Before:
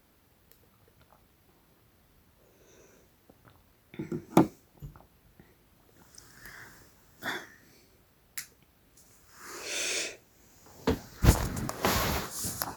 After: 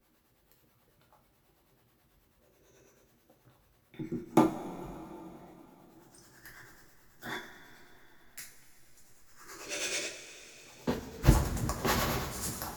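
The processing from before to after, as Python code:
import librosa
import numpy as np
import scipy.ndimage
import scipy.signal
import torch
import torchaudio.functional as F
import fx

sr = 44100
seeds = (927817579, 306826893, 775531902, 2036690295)

p1 = fx.backlash(x, sr, play_db=-26.5)
p2 = x + (p1 * librosa.db_to_amplitude(-6.5))
p3 = fx.harmonic_tremolo(p2, sr, hz=9.2, depth_pct=70, crossover_hz=400.0)
p4 = fx.rev_double_slope(p3, sr, seeds[0], early_s=0.3, late_s=4.0, knee_db=-18, drr_db=-1.0)
y = p4 * librosa.db_to_amplitude(-4.5)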